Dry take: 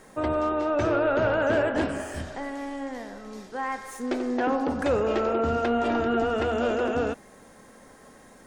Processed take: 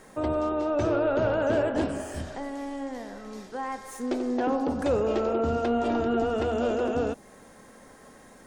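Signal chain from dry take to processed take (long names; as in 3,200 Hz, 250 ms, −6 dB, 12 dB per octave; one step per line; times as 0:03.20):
dynamic equaliser 1,800 Hz, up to −7 dB, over −44 dBFS, Q 0.91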